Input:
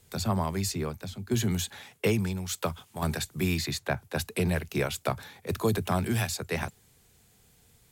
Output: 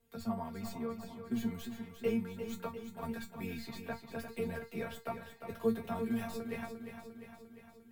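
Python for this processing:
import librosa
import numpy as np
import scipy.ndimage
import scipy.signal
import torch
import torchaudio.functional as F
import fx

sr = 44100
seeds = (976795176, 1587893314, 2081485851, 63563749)

p1 = fx.tracing_dist(x, sr, depth_ms=0.02)
p2 = fx.peak_eq(p1, sr, hz=6600.0, db=-12.5, octaves=2.2)
p3 = fx.comb_fb(p2, sr, f0_hz=230.0, decay_s=0.16, harmonics='all', damping=0.0, mix_pct=100)
p4 = p3 + fx.echo_feedback(p3, sr, ms=350, feedback_pct=60, wet_db=-9, dry=0)
y = F.gain(torch.from_numpy(p4), 1.5).numpy()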